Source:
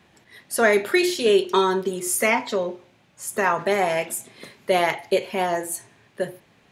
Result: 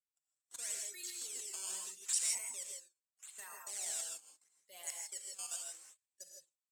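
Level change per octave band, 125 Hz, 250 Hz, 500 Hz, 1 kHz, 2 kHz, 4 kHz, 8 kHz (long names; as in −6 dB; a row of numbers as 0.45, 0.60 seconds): below −40 dB, below −40 dB, below −40 dB, −34.0 dB, −28.5 dB, −16.0 dB, −6.0 dB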